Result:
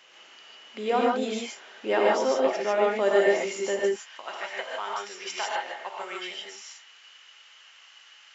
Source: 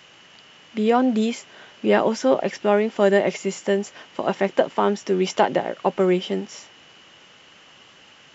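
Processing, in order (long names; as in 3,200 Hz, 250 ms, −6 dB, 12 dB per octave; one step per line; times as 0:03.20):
high-pass filter 410 Hz 12 dB per octave, from 0:03.79 1,300 Hz
reverb whose tail is shaped and stops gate 180 ms rising, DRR −2.5 dB
level −6 dB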